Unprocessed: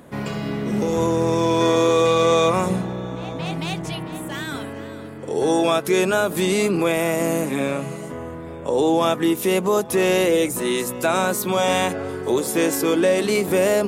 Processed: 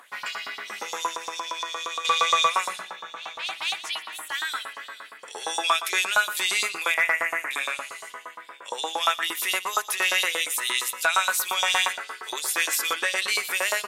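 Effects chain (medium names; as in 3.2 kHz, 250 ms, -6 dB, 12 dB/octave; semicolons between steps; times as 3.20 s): 6.94–7.51 s: resonant high shelf 2.8 kHz -12 dB, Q 3; LFO high-pass saw up 8.6 Hz 980–4600 Hz; on a send: delay 118 ms -14.5 dB; 1.11–2.05 s: on the sum: compression 6:1, threshold -29 dBFS, peak gain reduction 12 dB; in parallel at -10 dB: sine folder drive 4 dB, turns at -6 dBFS; on the sum: trim -5 dB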